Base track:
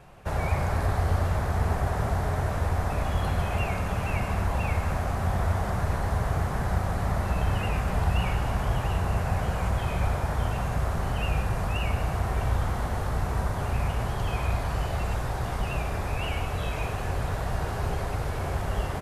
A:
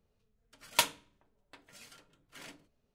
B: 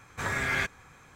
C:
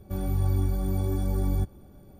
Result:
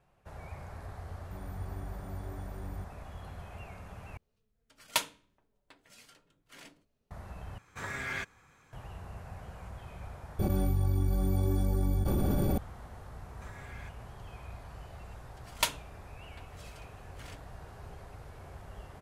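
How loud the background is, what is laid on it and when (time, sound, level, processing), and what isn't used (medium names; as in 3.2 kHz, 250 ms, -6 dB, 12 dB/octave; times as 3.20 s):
base track -18.5 dB
1.20 s: add C -16 dB
4.17 s: replace with A -2.5 dB
7.58 s: replace with B -8 dB
10.39 s: replace with C -5.5 dB + level flattener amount 100%
13.23 s: add B -17.5 dB + compression, threshold -30 dBFS
14.84 s: add A -2 dB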